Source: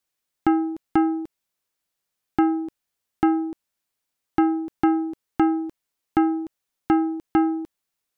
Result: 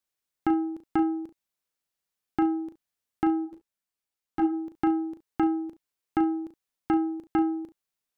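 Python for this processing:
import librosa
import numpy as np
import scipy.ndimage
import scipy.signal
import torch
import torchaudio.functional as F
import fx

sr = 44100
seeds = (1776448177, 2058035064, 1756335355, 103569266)

p1 = x + fx.room_early_taps(x, sr, ms=(37, 70), db=(-9.0, -17.5), dry=0)
p2 = fx.ensemble(p1, sr, at=(3.44, 4.52), fade=0.02)
y = p2 * 10.0 ** (-6.0 / 20.0)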